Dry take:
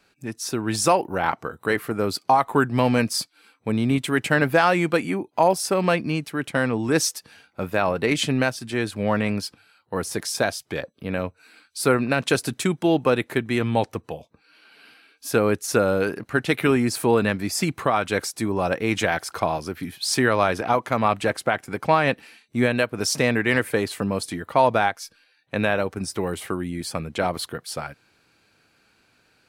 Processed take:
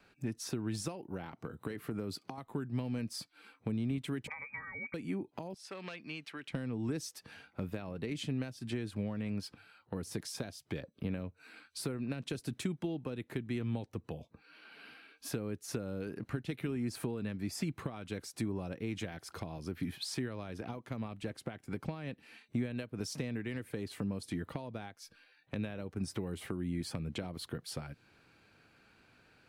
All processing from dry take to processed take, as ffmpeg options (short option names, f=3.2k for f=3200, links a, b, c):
-filter_complex "[0:a]asettb=1/sr,asplit=3[a][b][c];[a]atrim=end=1.074[d];[b]atrim=start=1.07:end=2.38,asetpts=PTS-STARTPTS,afade=t=in:d=0.004:c=qsin,afade=t=out:st=1.306:d=0.004:c=qsin,highpass=79,acompressor=threshold=-24dB:ratio=2:attack=3.2:release=140:knee=1:detection=peak[e];[c]atrim=start=2.376[f];[d][e]acrossfade=d=0.004:c1=hsin:c2=qsin[g];[g][f]acrossfade=d=0.004:c1=qsin:c2=hsin,asettb=1/sr,asplit=3[h][i][j];[h]atrim=end=4.274[k];[i]atrim=start=4.27:end=4.94,asetpts=PTS-STARTPTS,afade=t=in:d=0.004:c=qsin,afade=t=out:st=0.666:d=0.004:c=qsin,aecho=1:1:2.9:0.92,atrim=end_sample=29547,lowpass=f=2.2k:t=q:w=0.5098,lowpass=f=2.2k:t=q:w=0.6013,lowpass=f=2.2k:t=q:w=0.9,lowpass=f=2.2k:t=q:w=2.563,afreqshift=-2600[l];[j]atrim=start=4.936[m];[k][l]acrossfade=d=0.004:c1=hsin:c2=qsin[n];[n][m]acrossfade=d=0.004:c1=qsin:c2=hsin,asettb=1/sr,asplit=3[o][p][q];[o]atrim=end=5.544[r];[p]atrim=start=5.54:end=6.52,asetpts=PTS-STARTPTS,afade=t=in:d=0.004:c=qsin,afade=t=out:st=0.976:d=0.004:c=qsin,volume=14dB,asoftclip=hard,volume=-14dB,bandpass=f=2.4k:t=q:w=0.7[s];[q]atrim=start=6.516[t];[r][s]acrossfade=d=0.004:c1=hsin:c2=qsin[u];[u][t]acrossfade=d=0.004:c1=qsin:c2=hsin,acompressor=threshold=-31dB:ratio=6,bass=f=250:g=3,treble=f=4k:g=-8,acrossover=split=400|3000[v][w][x];[w]acompressor=threshold=-48dB:ratio=4[y];[v][y][x]amix=inputs=3:normalize=0,volume=-2dB"